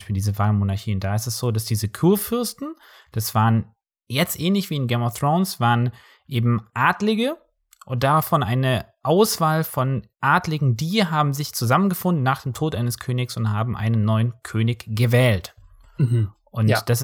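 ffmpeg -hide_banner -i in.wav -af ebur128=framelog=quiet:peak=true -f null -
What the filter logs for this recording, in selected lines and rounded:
Integrated loudness:
  I:         -21.5 LUFS
  Threshold: -31.9 LUFS
Loudness range:
  LRA:         2.5 LU
  Threshold: -41.8 LUFS
  LRA low:   -23.0 LUFS
  LRA high:  -20.5 LUFS
True peak:
  Peak:       -3.8 dBFS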